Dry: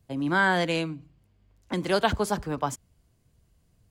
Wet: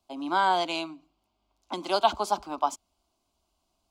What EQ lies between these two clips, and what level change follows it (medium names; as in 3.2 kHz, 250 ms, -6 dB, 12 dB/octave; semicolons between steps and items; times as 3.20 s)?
three-band isolator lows -18 dB, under 410 Hz, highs -12 dB, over 5.8 kHz; static phaser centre 480 Hz, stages 6; +5.0 dB